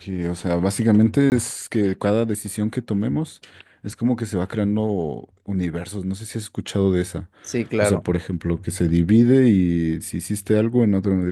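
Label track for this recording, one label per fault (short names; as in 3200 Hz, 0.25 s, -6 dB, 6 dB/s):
1.300000	1.320000	gap 19 ms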